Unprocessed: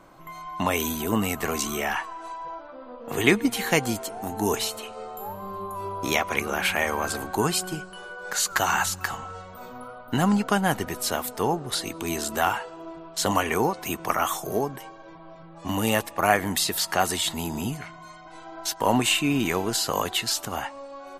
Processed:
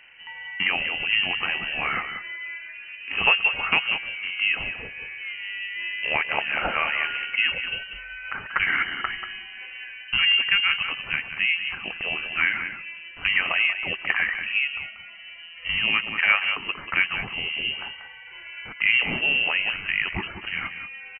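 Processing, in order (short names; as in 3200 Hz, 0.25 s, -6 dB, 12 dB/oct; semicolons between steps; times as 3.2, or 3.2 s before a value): on a send: echo 0.187 s -10 dB; on the sum: treble ducked by the level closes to 1800 Hz, closed at -19 dBFS; inverted band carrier 3000 Hz; gain +1 dB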